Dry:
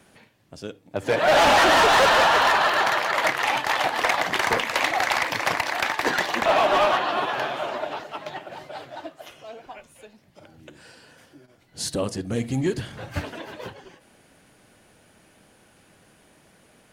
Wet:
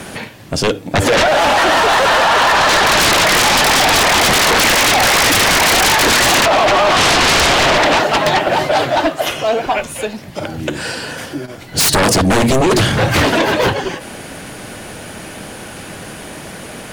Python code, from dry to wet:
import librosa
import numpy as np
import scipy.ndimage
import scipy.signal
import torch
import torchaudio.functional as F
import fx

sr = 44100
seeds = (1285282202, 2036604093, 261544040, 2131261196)

y = fx.over_compress(x, sr, threshold_db=-26.0, ratio=-1.0)
y = fx.fold_sine(y, sr, drive_db=18, ceiling_db=-8.5)